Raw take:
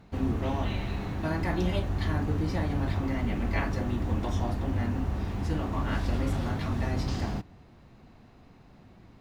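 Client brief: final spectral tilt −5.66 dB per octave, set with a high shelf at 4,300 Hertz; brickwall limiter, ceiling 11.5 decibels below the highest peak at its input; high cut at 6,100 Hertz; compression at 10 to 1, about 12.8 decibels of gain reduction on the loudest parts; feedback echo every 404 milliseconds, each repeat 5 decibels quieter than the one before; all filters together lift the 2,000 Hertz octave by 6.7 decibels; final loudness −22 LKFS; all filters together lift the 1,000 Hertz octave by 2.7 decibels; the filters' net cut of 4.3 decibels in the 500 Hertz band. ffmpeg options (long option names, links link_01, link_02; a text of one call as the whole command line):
ffmpeg -i in.wav -af "lowpass=6100,equalizer=frequency=500:width_type=o:gain=-8,equalizer=frequency=1000:width_type=o:gain=4.5,equalizer=frequency=2000:width_type=o:gain=8.5,highshelf=frequency=4300:gain=-7,acompressor=threshold=-37dB:ratio=10,alimiter=level_in=15.5dB:limit=-24dB:level=0:latency=1,volume=-15.5dB,aecho=1:1:404|808|1212|1616|2020|2424|2828:0.562|0.315|0.176|0.0988|0.0553|0.031|0.0173,volume=25.5dB" out.wav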